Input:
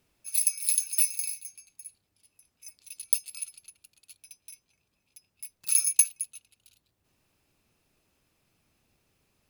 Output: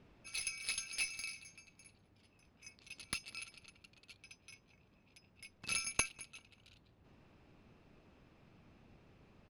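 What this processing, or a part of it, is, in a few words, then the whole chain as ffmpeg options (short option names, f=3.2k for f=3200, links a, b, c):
phone in a pocket: -filter_complex "[0:a]lowpass=3.9k,equalizer=f=200:t=o:w=0.77:g=3,highshelf=f=2.2k:g=-9.5,asplit=2[a][b];[b]adelay=196,lowpass=f=4.9k:p=1,volume=-23.5dB,asplit=2[c][d];[d]adelay=196,lowpass=f=4.9k:p=1,volume=0.42,asplit=2[e][f];[f]adelay=196,lowpass=f=4.9k:p=1,volume=0.42[g];[a][c][e][g]amix=inputs=4:normalize=0,volume=10dB"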